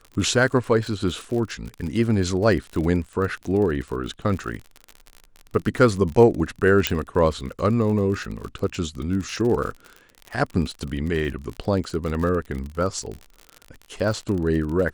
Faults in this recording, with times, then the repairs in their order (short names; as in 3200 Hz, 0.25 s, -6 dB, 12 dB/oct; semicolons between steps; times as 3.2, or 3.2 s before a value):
crackle 45/s -29 dBFS
6.87 pop -2 dBFS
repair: de-click